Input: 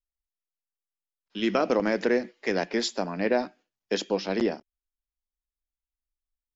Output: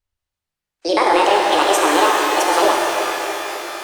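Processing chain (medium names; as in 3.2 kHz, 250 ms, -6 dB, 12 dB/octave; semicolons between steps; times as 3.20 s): gliding tape speed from 156% -> 186%; bass shelf 180 Hz -4.5 dB; in parallel at +2.5 dB: compressor with a negative ratio -29 dBFS; on the sum: treble shelf 6.6 kHz -11 dB; pitch-shifted reverb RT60 4 s, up +12 st, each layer -8 dB, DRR -2 dB; trim +3.5 dB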